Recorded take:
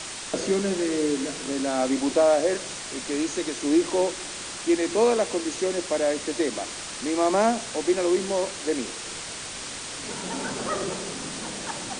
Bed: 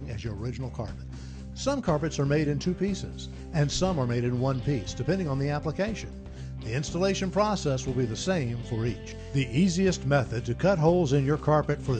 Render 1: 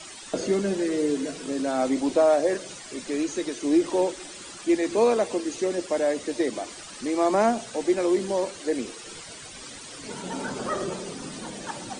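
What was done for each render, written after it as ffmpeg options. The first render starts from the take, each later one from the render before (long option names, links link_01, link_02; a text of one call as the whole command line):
ffmpeg -i in.wav -af "afftdn=noise_reduction=12:noise_floor=-36" out.wav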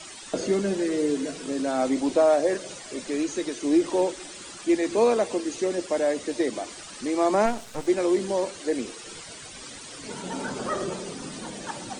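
ffmpeg -i in.wav -filter_complex "[0:a]asettb=1/sr,asplit=3[link_01][link_02][link_03];[link_01]atrim=end=2.644[link_04];[link_02]atrim=start=2.64:end=3.07,asetpts=PTS-STARTPTS,afade=type=in:duration=0.004:curve=qsin,afade=type=out:start_time=0.426:duration=0.004:curve=qsin,equalizer=frequency=550:width_type=o:width=0.77:gain=5.5[link_05];[link_03]atrim=start=3.066[link_06];[link_04][link_05]acrossfade=duration=0.004:curve1=hsin:curve2=qsin[link_07];[link_07][link_06]acrossfade=duration=0.004:curve1=qsin:curve2=hsin,asplit=3[link_08][link_09][link_10];[link_08]afade=type=out:start_time=7.45:duration=0.02[link_11];[link_09]aeval=exprs='max(val(0),0)':channel_layout=same,afade=type=in:start_time=7.45:duration=0.02,afade=type=out:start_time=7.86:duration=0.02[link_12];[link_10]afade=type=in:start_time=7.86:duration=0.02[link_13];[link_11][link_12][link_13]amix=inputs=3:normalize=0" out.wav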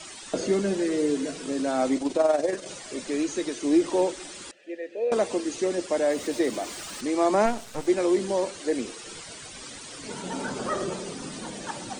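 ffmpeg -i in.wav -filter_complex "[0:a]asettb=1/sr,asplit=3[link_01][link_02][link_03];[link_01]atrim=end=1.974[link_04];[link_02]atrim=start=1.97:end=2.66,asetpts=PTS-STARTPTS,afade=type=in:duration=0.004:curve=qsin,afade=type=out:start_time=0.686:duration=0.004:curve=qsin,tremolo=f=21:d=0.571[link_05];[link_03]atrim=start=2.656[link_06];[link_04][link_05]acrossfade=duration=0.004:curve1=hsin:curve2=qsin[link_07];[link_07][link_06]acrossfade=duration=0.004:curve1=qsin:curve2=hsin,asettb=1/sr,asplit=3[link_08][link_09][link_10];[link_08]atrim=end=4.514[link_11];[link_09]atrim=start=4.51:end=5.12,asetpts=PTS-STARTPTS,afade=type=in:duration=0.004:curve=qsin,afade=type=out:start_time=0.606:duration=0.004:curve=qsin,asplit=3[link_12][link_13][link_14];[link_12]bandpass=frequency=530:width_type=q:width=8,volume=0dB[link_15];[link_13]bandpass=frequency=1840:width_type=q:width=8,volume=-6dB[link_16];[link_14]bandpass=frequency=2480:width_type=q:width=8,volume=-9dB[link_17];[link_15][link_16][link_17]amix=inputs=3:normalize=0[link_18];[link_10]atrim=start=5.116[link_19];[link_11][link_18]acrossfade=duration=0.004:curve1=hsin:curve2=qsin[link_20];[link_20][link_19]acrossfade=duration=0.004:curve1=qsin:curve2=hsin,asettb=1/sr,asplit=3[link_21][link_22][link_23];[link_21]atrim=end=6.104[link_24];[link_22]atrim=start=6.1:end=7.01,asetpts=PTS-STARTPTS,afade=type=in:duration=0.004:curve=qsin,afade=type=out:start_time=0.906:duration=0.004:curve=qsin,aeval=exprs='val(0)+0.5*0.01*sgn(val(0))':channel_layout=same[link_25];[link_23]atrim=start=7.006[link_26];[link_24][link_25]acrossfade=duration=0.004:curve1=hsin:curve2=qsin[link_27];[link_27][link_26]acrossfade=duration=0.004:curve1=qsin:curve2=hsin" out.wav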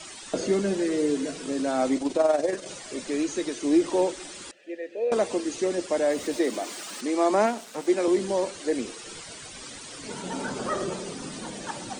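ffmpeg -i in.wav -filter_complex "[0:a]asettb=1/sr,asplit=3[link_01][link_02][link_03];[link_01]atrim=end=6.364[link_04];[link_02]atrim=start=6.36:end=8.08,asetpts=PTS-STARTPTS,afade=type=in:duration=0.004:curve=qsin,afade=type=out:start_time=1.716:duration=0.004:curve=qsin,highpass=frequency=190:width=0.5412,highpass=frequency=190:width=1.3066[link_05];[link_03]atrim=start=8.076[link_06];[link_04][link_05]acrossfade=duration=0.004:curve1=hsin:curve2=qsin[link_07];[link_07][link_06]acrossfade=duration=0.004:curve1=qsin:curve2=hsin" out.wav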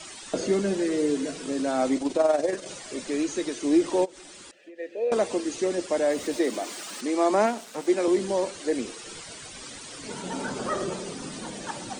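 ffmpeg -i in.wav -filter_complex "[0:a]asplit=3[link_01][link_02][link_03];[link_01]afade=type=out:start_time=4.04:duration=0.02[link_04];[link_02]acompressor=threshold=-41dB:ratio=20:attack=3.2:release=140:knee=1:detection=peak,afade=type=in:start_time=4.04:duration=0.02,afade=type=out:start_time=4.78:duration=0.02[link_05];[link_03]afade=type=in:start_time=4.78:duration=0.02[link_06];[link_04][link_05][link_06]amix=inputs=3:normalize=0" out.wav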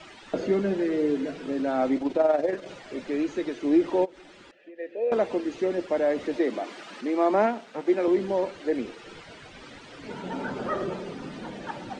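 ffmpeg -i in.wav -af "lowpass=2700,bandreject=frequency=1100:width=18" out.wav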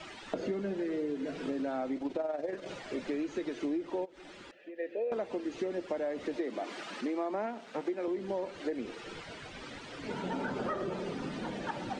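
ffmpeg -i in.wav -af "acompressor=threshold=-31dB:ratio=10" out.wav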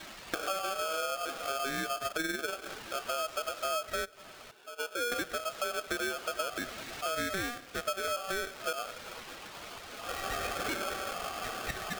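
ffmpeg -i in.wav -af "aeval=exprs='val(0)*sgn(sin(2*PI*960*n/s))':channel_layout=same" out.wav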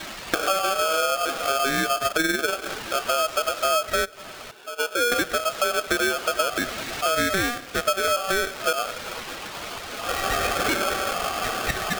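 ffmpeg -i in.wav -af "volume=11dB" out.wav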